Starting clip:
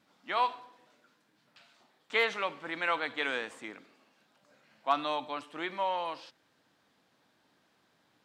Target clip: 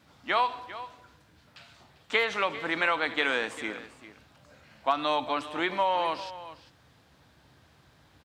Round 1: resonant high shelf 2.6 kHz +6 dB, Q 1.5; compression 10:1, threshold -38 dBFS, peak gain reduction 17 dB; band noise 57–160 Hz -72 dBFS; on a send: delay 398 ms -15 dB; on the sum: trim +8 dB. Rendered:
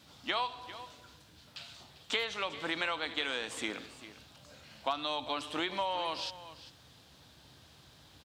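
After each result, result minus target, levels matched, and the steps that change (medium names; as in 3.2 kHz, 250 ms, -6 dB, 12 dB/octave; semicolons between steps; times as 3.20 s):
compression: peak gain reduction +8.5 dB; 4 kHz band +6.0 dB
change: compression 10:1, threshold -29 dBFS, peak gain reduction 9 dB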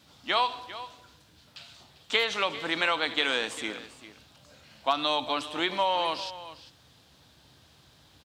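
4 kHz band +5.5 dB
remove: resonant high shelf 2.6 kHz +6 dB, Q 1.5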